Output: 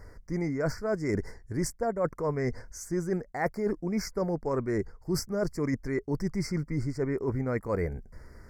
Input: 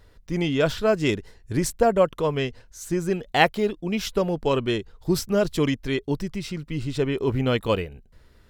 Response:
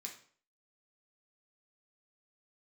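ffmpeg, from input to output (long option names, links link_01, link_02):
-af "highshelf=frequency=9000:gain=-7,areverse,acompressor=threshold=-32dB:ratio=10,areverse,asuperstop=centerf=3200:order=12:qfactor=1.3,volume=6dB"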